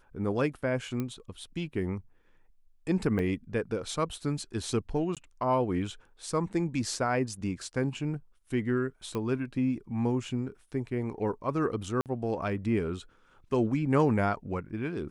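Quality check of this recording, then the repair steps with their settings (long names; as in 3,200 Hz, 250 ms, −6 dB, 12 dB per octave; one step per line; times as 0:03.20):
0:01.00: click −20 dBFS
0:03.19: drop-out 4.1 ms
0:05.15–0:05.17: drop-out 17 ms
0:09.15: click −21 dBFS
0:12.01–0:12.06: drop-out 48 ms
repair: click removal
repair the gap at 0:03.19, 4.1 ms
repair the gap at 0:05.15, 17 ms
repair the gap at 0:12.01, 48 ms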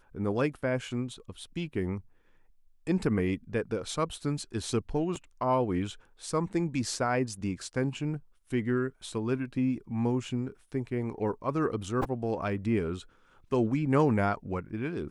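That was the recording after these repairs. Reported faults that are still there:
none of them is left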